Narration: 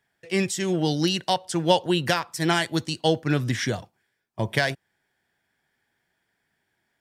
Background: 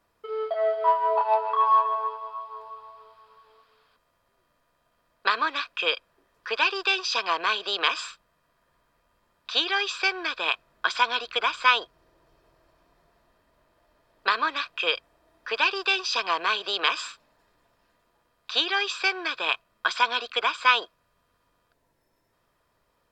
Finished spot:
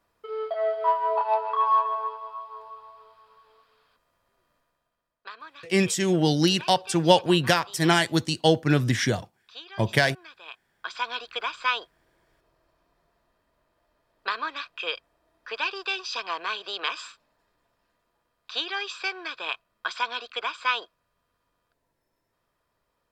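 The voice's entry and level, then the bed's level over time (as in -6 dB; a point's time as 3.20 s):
5.40 s, +2.0 dB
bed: 4.57 s -1.5 dB
5.28 s -18.5 dB
10.44 s -18.5 dB
11.12 s -5.5 dB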